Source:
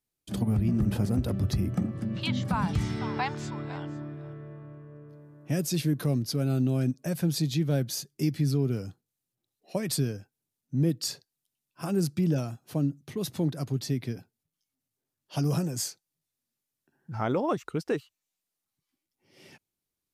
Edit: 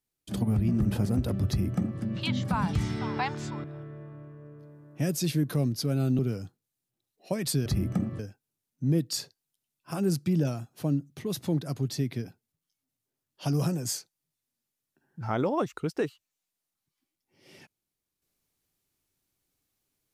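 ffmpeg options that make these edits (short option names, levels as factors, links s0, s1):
-filter_complex "[0:a]asplit=5[s0][s1][s2][s3][s4];[s0]atrim=end=3.642[s5];[s1]atrim=start=4.138:end=6.692[s6];[s2]atrim=start=8.628:end=10.102[s7];[s3]atrim=start=1.478:end=2.012[s8];[s4]atrim=start=10.098[s9];[s5][s6]acrossfade=d=0.004:c1=hsin:c2=hsin[s10];[s10][s7]acrossfade=d=0.004:c1=hsin:c2=hsin[s11];[s11][s8]acrossfade=d=0.004:c1=hsin:c2=hsin[s12];[s12][s9]acrossfade=d=0.004:c1=hsin:c2=hsin"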